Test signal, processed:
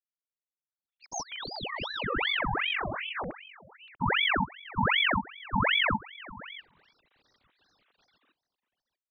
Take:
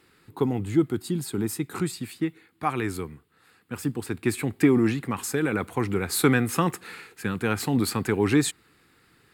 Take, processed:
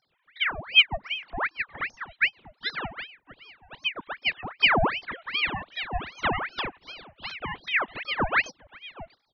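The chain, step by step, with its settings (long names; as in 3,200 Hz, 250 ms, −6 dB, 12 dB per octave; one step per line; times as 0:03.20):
three sine waves on the formant tracks
single-tap delay 640 ms −17.5 dB
ring modulator whose carrier an LFO sweeps 1,600 Hz, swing 80%, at 2.6 Hz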